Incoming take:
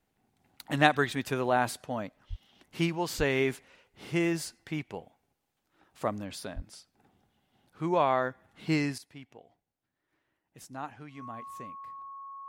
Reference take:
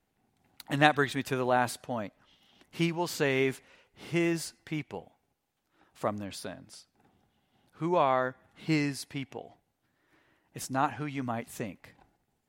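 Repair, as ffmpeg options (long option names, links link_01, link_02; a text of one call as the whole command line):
ffmpeg -i in.wav -filter_complex "[0:a]bandreject=frequency=1100:width=30,asplit=3[link_01][link_02][link_03];[link_01]afade=type=out:start_time=2.29:duration=0.02[link_04];[link_02]highpass=frequency=140:width=0.5412,highpass=frequency=140:width=1.3066,afade=type=in:start_time=2.29:duration=0.02,afade=type=out:start_time=2.41:duration=0.02[link_05];[link_03]afade=type=in:start_time=2.41:duration=0.02[link_06];[link_04][link_05][link_06]amix=inputs=3:normalize=0,asplit=3[link_07][link_08][link_09];[link_07]afade=type=out:start_time=3.17:duration=0.02[link_10];[link_08]highpass=frequency=140:width=0.5412,highpass=frequency=140:width=1.3066,afade=type=in:start_time=3.17:duration=0.02,afade=type=out:start_time=3.29:duration=0.02[link_11];[link_09]afade=type=in:start_time=3.29:duration=0.02[link_12];[link_10][link_11][link_12]amix=inputs=3:normalize=0,asplit=3[link_13][link_14][link_15];[link_13]afade=type=out:start_time=6.55:duration=0.02[link_16];[link_14]highpass=frequency=140:width=0.5412,highpass=frequency=140:width=1.3066,afade=type=in:start_time=6.55:duration=0.02,afade=type=out:start_time=6.67:duration=0.02[link_17];[link_15]afade=type=in:start_time=6.67:duration=0.02[link_18];[link_16][link_17][link_18]amix=inputs=3:normalize=0,asetnsamples=nb_out_samples=441:pad=0,asendcmd='8.98 volume volume 11dB',volume=0dB" out.wav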